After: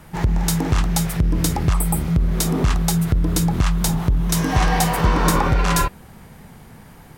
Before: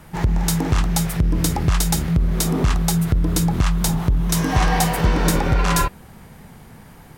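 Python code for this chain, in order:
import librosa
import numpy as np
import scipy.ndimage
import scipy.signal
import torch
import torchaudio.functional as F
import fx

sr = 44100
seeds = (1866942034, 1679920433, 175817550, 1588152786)

y = fx.spec_repair(x, sr, seeds[0], start_s=1.76, length_s=0.36, low_hz=1300.0, high_hz=7700.0, source='after')
y = fx.peak_eq(y, sr, hz=1100.0, db=fx.line((4.86, 4.5), (5.48, 13.0)), octaves=0.51, at=(4.86, 5.48), fade=0.02)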